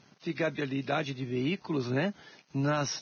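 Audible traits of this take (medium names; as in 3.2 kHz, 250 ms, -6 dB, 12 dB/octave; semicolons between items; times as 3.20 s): a quantiser's noise floor 10-bit, dither none; Vorbis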